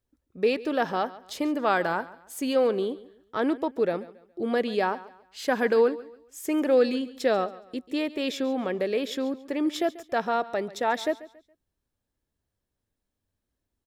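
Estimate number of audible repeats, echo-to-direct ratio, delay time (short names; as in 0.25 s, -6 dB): 2, -17.5 dB, 0.139 s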